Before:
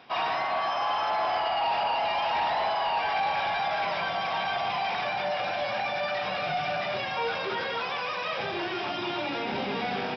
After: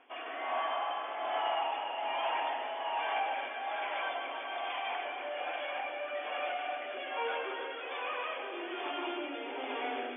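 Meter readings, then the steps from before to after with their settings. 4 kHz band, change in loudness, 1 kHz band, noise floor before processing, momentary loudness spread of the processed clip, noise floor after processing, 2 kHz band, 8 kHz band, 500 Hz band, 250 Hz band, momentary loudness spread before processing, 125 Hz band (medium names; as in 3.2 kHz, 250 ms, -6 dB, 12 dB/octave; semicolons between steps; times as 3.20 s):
-8.5 dB, -7.5 dB, -7.5 dB, -32 dBFS, 5 LU, -41 dBFS, -7.0 dB, no reading, -6.5 dB, -8.0 dB, 4 LU, under -40 dB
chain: FFT band-pass 240–3500 Hz; rotary cabinet horn 1.2 Hz; echo whose repeats swap between lows and highs 142 ms, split 1.4 kHz, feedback 70%, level -6 dB; trim -5 dB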